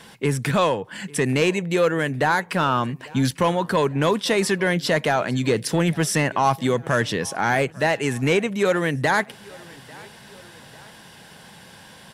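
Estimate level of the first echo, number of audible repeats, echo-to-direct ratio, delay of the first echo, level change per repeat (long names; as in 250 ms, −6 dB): −23.5 dB, 2, −22.5 dB, 846 ms, −5.5 dB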